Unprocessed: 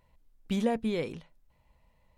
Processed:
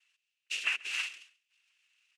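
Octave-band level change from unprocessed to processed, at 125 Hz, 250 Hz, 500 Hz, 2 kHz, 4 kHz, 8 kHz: under -40 dB, under -40 dB, under -30 dB, +11.5 dB, +8.5 dB, +9.0 dB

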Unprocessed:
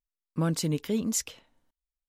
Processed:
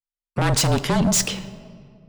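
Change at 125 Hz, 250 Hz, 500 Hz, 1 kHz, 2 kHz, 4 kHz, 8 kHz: +9.5, +6.0, +8.5, +17.0, +15.5, +13.5, +10.0 dB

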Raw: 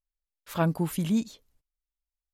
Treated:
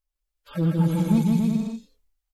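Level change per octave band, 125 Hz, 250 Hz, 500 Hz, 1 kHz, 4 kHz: +8.5, +8.0, +1.0, -1.0, -0.5 dB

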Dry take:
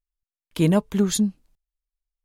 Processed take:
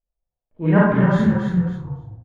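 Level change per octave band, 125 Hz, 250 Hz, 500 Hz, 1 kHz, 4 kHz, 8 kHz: +7.5 dB, +5.0 dB, +5.0 dB, +11.5 dB, n/a, under -20 dB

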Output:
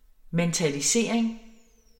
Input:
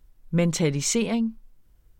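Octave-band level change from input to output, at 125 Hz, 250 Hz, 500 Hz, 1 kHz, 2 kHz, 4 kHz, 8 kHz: -4.0, -1.5, -0.5, +1.5, +2.0, +1.5, +2.0 dB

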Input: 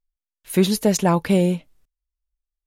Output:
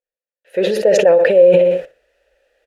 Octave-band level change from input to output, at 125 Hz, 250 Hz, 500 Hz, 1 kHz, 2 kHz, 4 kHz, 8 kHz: -8.0 dB, -5.5 dB, +13.5 dB, -1.0 dB, +9.0 dB, 0.0 dB, n/a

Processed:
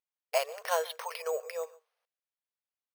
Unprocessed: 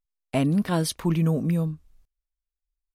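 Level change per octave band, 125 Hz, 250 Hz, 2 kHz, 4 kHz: under -40 dB, under -40 dB, -0.5 dB, -4.0 dB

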